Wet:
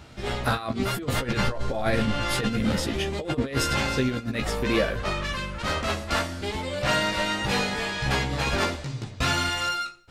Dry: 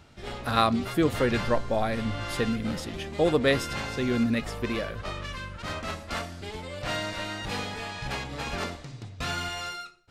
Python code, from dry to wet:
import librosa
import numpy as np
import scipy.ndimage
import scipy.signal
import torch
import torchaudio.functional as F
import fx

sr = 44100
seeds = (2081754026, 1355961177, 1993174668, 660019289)

y = fx.over_compress(x, sr, threshold_db=-28.0, ratio=-0.5)
y = fx.doubler(y, sr, ms=15.0, db=-4.5)
y = y * librosa.db_to_amplitude(4.0)